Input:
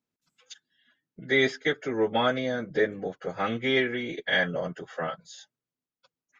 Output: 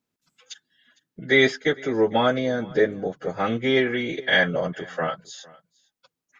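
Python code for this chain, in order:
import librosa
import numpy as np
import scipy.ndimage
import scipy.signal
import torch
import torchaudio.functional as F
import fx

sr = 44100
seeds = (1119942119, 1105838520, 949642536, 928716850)

y = fx.peak_eq(x, sr, hz=2400.0, db=-4.5, octaves=2.2, at=(1.64, 3.87))
y = y + 10.0 ** (-23.5 / 20.0) * np.pad(y, (int(456 * sr / 1000.0), 0))[:len(y)]
y = y * librosa.db_to_amplitude(5.5)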